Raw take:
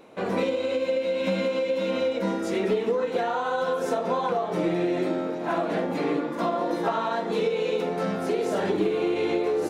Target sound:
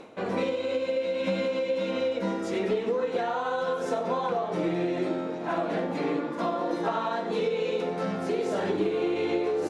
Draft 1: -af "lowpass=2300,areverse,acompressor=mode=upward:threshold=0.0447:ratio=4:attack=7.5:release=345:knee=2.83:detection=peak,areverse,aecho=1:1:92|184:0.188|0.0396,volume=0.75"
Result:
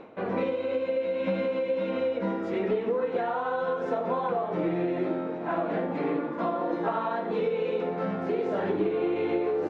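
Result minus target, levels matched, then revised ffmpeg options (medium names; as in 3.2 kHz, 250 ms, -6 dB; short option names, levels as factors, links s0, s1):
8 kHz band -18.5 dB
-af "lowpass=8800,areverse,acompressor=mode=upward:threshold=0.0447:ratio=4:attack=7.5:release=345:knee=2.83:detection=peak,areverse,aecho=1:1:92|184:0.188|0.0396,volume=0.75"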